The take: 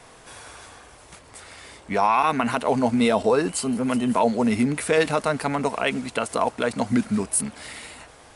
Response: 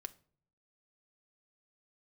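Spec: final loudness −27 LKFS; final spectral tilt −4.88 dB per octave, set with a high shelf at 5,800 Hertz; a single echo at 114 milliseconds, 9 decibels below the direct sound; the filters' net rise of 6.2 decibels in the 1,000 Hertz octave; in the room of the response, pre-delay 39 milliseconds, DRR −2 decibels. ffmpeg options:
-filter_complex "[0:a]equalizer=frequency=1000:width_type=o:gain=7.5,highshelf=frequency=5800:gain=-4,aecho=1:1:114:0.355,asplit=2[link_01][link_02];[1:a]atrim=start_sample=2205,adelay=39[link_03];[link_02][link_03]afir=irnorm=-1:irlink=0,volume=6dB[link_04];[link_01][link_04]amix=inputs=2:normalize=0,volume=-11.5dB"

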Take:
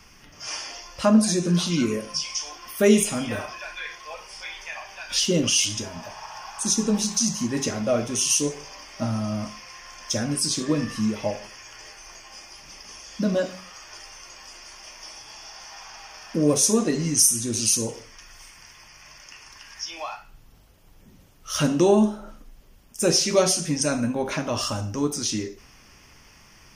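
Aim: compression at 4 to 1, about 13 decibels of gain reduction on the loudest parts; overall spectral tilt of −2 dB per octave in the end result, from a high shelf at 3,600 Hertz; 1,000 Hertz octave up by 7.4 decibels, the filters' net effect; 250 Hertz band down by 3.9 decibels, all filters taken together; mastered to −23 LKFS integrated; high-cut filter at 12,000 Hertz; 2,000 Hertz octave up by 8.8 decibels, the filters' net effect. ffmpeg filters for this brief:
ffmpeg -i in.wav -af "lowpass=12000,equalizer=frequency=250:width_type=o:gain=-5.5,equalizer=frequency=1000:width_type=o:gain=7,equalizer=frequency=2000:width_type=o:gain=7,highshelf=frequency=3600:gain=8,acompressor=threshold=-23dB:ratio=4,volume=4dB" out.wav

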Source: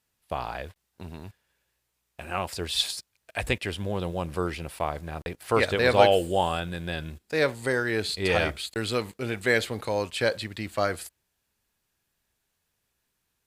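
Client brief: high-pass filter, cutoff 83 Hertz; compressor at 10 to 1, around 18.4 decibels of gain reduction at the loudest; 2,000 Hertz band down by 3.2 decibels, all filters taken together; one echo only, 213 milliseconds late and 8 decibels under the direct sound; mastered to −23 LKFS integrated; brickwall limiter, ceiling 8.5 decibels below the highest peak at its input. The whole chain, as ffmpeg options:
ffmpeg -i in.wav -af "highpass=83,equalizer=frequency=2000:width_type=o:gain=-4,acompressor=threshold=-31dB:ratio=10,alimiter=level_in=1dB:limit=-24dB:level=0:latency=1,volume=-1dB,aecho=1:1:213:0.398,volume=15dB" out.wav

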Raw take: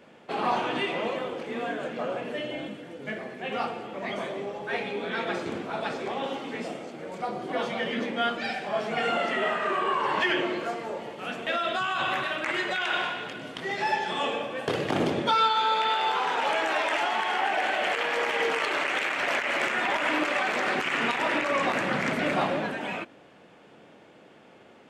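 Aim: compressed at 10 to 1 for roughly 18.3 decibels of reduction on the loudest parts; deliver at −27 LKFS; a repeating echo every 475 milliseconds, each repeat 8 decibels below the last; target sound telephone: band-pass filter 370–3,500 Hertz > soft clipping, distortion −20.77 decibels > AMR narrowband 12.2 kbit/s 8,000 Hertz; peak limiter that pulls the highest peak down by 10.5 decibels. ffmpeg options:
ffmpeg -i in.wav -af "acompressor=threshold=-40dB:ratio=10,alimiter=level_in=11.5dB:limit=-24dB:level=0:latency=1,volume=-11.5dB,highpass=370,lowpass=3500,aecho=1:1:475|950|1425|1900|2375:0.398|0.159|0.0637|0.0255|0.0102,asoftclip=threshold=-37dB,volume=20dB" -ar 8000 -c:a libopencore_amrnb -b:a 12200 out.amr

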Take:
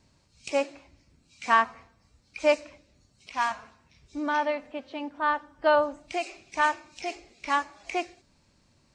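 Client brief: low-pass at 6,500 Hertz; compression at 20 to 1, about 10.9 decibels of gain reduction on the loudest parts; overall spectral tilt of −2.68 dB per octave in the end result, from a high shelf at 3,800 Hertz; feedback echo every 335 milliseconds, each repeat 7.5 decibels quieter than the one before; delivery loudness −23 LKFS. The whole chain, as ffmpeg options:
ffmpeg -i in.wav -af "lowpass=6500,highshelf=frequency=3800:gain=3.5,acompressor=threshold=-27dB:ratio=20,aecho=1:1:335|670|1005|1340|1675:0.422|0.177|0.0744|0.0312|0.0131,volume=12.5dB" out.wav

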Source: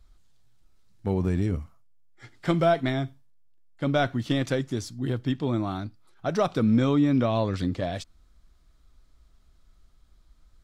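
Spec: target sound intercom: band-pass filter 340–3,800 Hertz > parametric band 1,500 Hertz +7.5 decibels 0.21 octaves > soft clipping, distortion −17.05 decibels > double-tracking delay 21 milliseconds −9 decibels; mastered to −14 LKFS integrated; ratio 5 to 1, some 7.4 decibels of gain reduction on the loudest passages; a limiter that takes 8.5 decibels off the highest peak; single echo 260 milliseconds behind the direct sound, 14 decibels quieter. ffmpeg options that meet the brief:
ffmpeg -i in.wav -filter_complex "[0:a]acompressor=threshold=-26dB:ratio=5,alimiter=level_in=2dB:limit=-24dB:level=0:latency=1,volume=-2dB,highpass=340,lowpass=3800,equalizer=frequency=1500:width_type=o:width=0.21:gain=7.5,aecho=1:1:260:0.2,asoftclip=threshold=-29dB,asplit=2[link_01][link_02];[link_02]adelay=21,volume=-9dB[link_03];[link_01][link_03]amix=inputs=2:normalize=0,volume=26.5dB" out.wav

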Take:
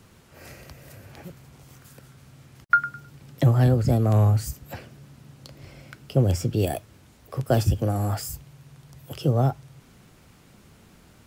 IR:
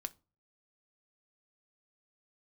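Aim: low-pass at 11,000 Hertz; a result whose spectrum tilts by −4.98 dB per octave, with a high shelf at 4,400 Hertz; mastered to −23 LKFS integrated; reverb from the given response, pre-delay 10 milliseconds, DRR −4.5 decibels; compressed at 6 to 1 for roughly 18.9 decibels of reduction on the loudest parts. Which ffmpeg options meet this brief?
-filter_complex "[0:a]lowpass=11000,highshelf=frequency=4400:gain=8.5,acompressor=threshold=-34dB:ratio=6,asplit=2[link_01][link_02];[1:a]atrim=start_sample=2205,adelay=10[link_03];[link_02][link_03]afir=irnorm=-1:irlink=0,volume=7dB[link_04];[link_01][link_04]amix=inputs=2:normalize=0,volume=10dB"

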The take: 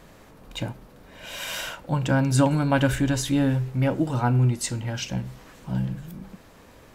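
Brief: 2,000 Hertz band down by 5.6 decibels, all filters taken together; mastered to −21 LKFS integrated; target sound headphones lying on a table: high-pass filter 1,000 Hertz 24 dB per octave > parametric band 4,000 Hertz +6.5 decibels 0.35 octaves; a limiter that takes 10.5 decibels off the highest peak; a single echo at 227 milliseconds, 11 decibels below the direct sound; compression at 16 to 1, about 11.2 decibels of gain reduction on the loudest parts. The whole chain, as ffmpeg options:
ffmpeg -i in.wav -af "equalizer=frequency=2000:width_type=o:gain=-8.5,acompressor=threshold=-27dB:ratio=16,alimiter=level_in=5.5dB:limit=-24dB:level=0:latency=1,volume=-5.5dB,highpass=frequency=1000:width=0.5412,highpass=frequency=1000:width=1.3066,equalizer=frequency=4000:width_type=o:width=0.35:gain=6.5,aecho=1:1:227:0.282,volume=21.5dB" out.wav

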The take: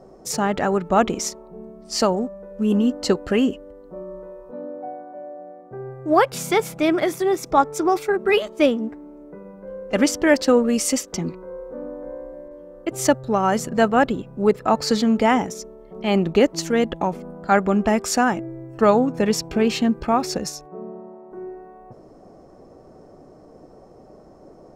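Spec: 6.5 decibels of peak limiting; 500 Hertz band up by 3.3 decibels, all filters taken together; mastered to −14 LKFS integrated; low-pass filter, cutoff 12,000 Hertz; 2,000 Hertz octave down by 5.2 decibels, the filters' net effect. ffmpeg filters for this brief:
ffmpeg -i in.wav -af "lowpass=12000,equalizer=frequency=500:width_type=o:gain=4.5,equalizer=frequency=2000:width_type=o:gain=-7,volume=7dB,alimiter=limit=-1dB:level=0:latency=1" out.wav

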